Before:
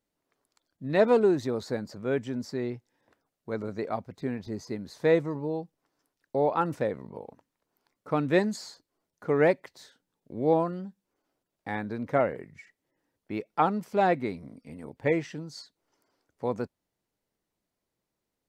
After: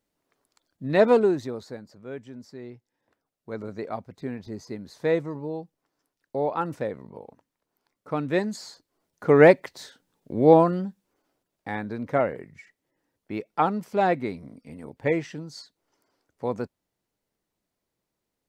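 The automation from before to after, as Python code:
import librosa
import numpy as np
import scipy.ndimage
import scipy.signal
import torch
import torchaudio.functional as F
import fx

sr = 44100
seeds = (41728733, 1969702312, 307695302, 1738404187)

y = fx.gain(x, sr, db=fx.line((1.13, 3.5), (1.86, -9.0), (2.59, -9.0), (3.64, -1.0), (8.44, -1.0), (9.35, 8.5), (10.77, 8.5), (11.73, 1.5)))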